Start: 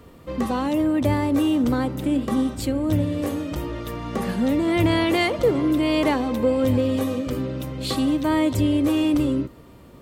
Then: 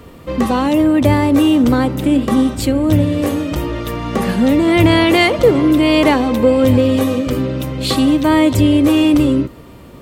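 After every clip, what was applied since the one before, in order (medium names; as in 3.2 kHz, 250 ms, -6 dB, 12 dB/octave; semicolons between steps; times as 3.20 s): peaking EQ 2.6 kHz +2 dB; trim +8.5 dB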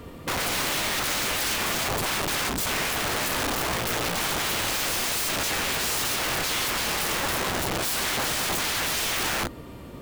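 in parallel at -1 dB: peak limiter -9 dBFS, peak gain reduction 7.5 dB; on the sum: integer overflow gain 13.5 dB; trim -8.5 dB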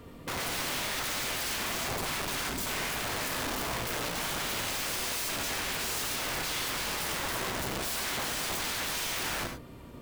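gated-style reverb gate 120 ms rising, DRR 6 dB; trim -7.5 dB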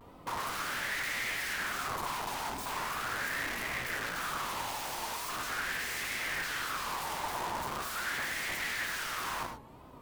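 wow and flutter 150 cents; sweeping bell 0.41 Hz 860–2000 Hz +14 dB; trim -7.5 dB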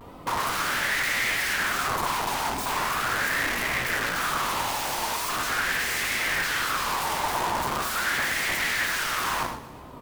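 feedback delay 122 ms, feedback 55%, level -17 dB; trim +9 dB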